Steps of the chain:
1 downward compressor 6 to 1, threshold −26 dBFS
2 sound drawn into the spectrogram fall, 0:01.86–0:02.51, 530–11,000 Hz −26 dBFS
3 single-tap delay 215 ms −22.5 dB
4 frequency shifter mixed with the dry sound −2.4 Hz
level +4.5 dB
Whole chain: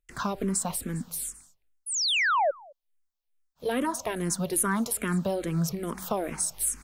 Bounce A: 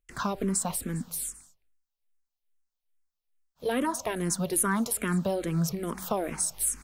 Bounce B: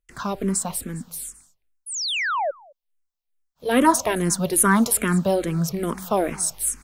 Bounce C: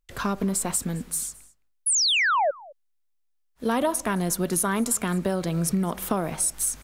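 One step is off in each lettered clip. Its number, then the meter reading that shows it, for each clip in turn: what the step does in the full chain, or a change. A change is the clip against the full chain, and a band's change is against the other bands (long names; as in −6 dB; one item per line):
2, 4 kHz band −9.5 dB
1, average gain reduction 5.0 dB
4, change in momentary loudness spread −1 LU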